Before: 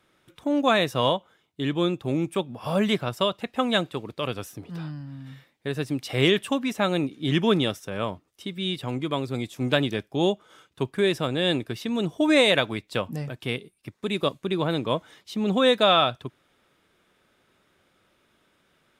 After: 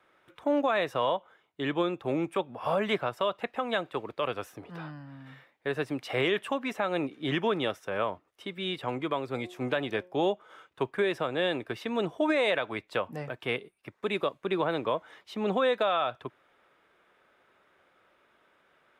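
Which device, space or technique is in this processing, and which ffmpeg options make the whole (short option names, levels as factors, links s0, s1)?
DJ mixer with the lows and highs turned down: -filter_complex "[0:a]acrossover=split=410 2500:gain=0.224 1 0.2[s0][s1][s2];[s0][s1][s2]amix=inputs=3:normalize=0,alimiter=limit=0.0891:level=0:latency=1:release=209,asettb=1/sr,asplit=3[s3][s4][s5];[s3]atrim=end=9.324[s6];[s4]atrim=start=9.32:end=10.17,asetpts=PTS-STARTPTS,afade=t=in:d=0.004:c=qsin,afade=t=out:st=0.846:d=0.004:c=qsin,bandreject=f=180.1:t=h:w=4,bandreject=f=360.2:t=h:w=4,bandreject=f=540.3:t=h:w=4,bandreject=f=720.4:t=h:w=4,bandreject=f=900.5:t=h:w=4,bandreject=f=1080.6:t=h:w=4[s7];[s5]atrim=start=10.166[s8];[s6][s7]acrossfade=d=0.004:c1=hsin:c2=qsin[s9];[s9][s8]acrossfade=d=0.004:c1=qsin:c2=hsin,volume=1.5"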